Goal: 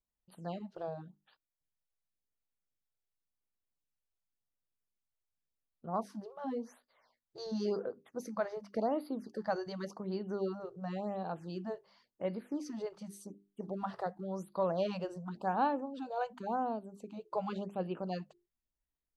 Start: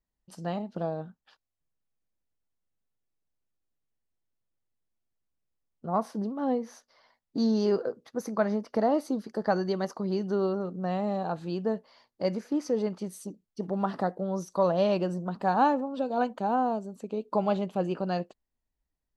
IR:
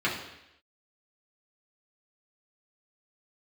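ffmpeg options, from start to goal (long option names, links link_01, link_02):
-af "bandreject=frequency=50:width_type=h:width=6,bandreject=frequency=100:width_type=h:width=6,bandreject=frequency=150:width_type=h:width=6,bandreject=frequency=200:width_type=h:width=6,bandreject=frequency=250:width_type=h:width=6,bandreject=frequency=300:width_type=h:width=6,bandreject=frequency=350:width_type=h:width=6,bandreject=frequency=400:width_type=h:width=6,afftfilt=real='re*(1-between(b*sr/1024,220*pow(7200/220,0.5+0.5*sin(2*PI*0.91*pts/sr))/1.41,220*pow(7200/220,0.5+0.5*sin(2*PI*0.91*pts/sr))*1.41))':imag='im*(1-between(b*sr/1024,220*pow(7200/220,0.5+0.5*sin(2*PI*0.91*pts/sr))/1.41,220*pow(7200/220,0.5+0.5*sin(2*PI*0.91*pts/sr))*1.41))':win_size=1024:overlap=0.75,volume=-7.5dB"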